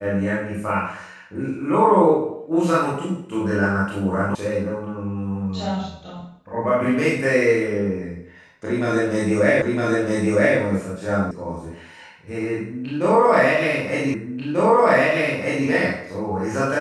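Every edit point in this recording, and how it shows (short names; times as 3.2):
4.35 sound cut off
9.62 repeat of the last 0.96 s
11.31 sound cut off
14.14 repeat of the last 1.54 s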